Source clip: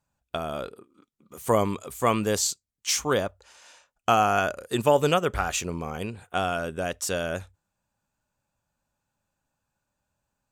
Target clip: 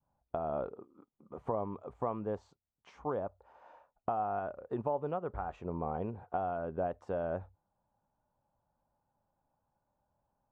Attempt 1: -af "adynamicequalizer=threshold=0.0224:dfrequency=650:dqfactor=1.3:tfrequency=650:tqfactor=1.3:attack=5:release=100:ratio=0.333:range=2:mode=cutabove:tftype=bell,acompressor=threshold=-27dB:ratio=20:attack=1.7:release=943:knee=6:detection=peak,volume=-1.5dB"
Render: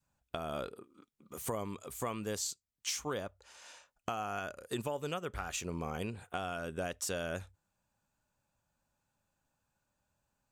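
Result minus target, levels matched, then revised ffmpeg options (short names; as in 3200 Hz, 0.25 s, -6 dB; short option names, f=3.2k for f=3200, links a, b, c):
1000 Hz band -3.0 dB
-af "adynamicequalizer=threshold=0.0224:dfrequency=650:dqfactor=1.3:tfrequency=650:tqfactor=1.3:attack=5:release=100:ratio=0.333:range=2:mode=cutabove:tftype=bell,acompressor=threshold=-27dB:ratio=20:attack=1.7:release=943:knee=6:detection=peak,lowpass=f=840:t=q:w=2.1,volume=-1.5dB"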